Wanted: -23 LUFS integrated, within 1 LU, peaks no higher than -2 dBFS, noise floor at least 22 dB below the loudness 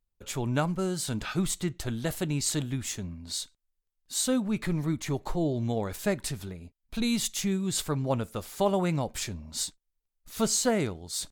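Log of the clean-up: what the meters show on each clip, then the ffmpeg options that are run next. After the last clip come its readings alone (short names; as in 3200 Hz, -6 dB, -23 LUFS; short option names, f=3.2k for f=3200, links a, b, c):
loudness -30.0 LUFS; peak -13.0 dBFS; loudness target -23.0 LUFS
-> -af "volume=7dB"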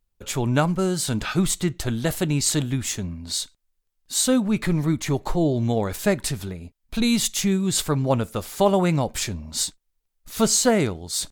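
loudness -23.0 LUFS; peak -6.0 dBFS; noise floor -76 dBFS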